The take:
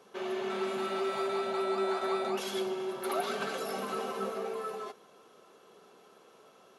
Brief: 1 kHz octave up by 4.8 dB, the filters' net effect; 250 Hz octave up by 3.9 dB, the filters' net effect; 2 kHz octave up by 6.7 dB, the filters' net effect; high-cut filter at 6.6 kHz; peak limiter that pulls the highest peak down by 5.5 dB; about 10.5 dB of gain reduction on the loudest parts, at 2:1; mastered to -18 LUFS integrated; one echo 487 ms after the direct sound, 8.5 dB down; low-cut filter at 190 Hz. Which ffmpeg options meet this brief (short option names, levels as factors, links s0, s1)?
-af "highpass=190,lowpass=6600,equalizer=f=250:t=o:g=8,equalizer=f=1000:t=o:g=3.5,equalizer=f=2000:t=o:g=7.5,acompressor=threshold=0.00631:ratio=2,alimiter=level_in=2.66:limit=0.0631:level=0:latency=1,volume=0.376,aecho=1:1:487:0.376,volume=13.3"